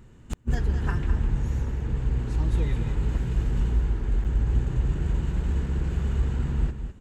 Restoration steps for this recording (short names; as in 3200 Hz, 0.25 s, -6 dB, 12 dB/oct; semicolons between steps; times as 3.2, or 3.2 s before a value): interpolate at 4.24, 7.7 ms; inverse comb 0.206 s -9 dB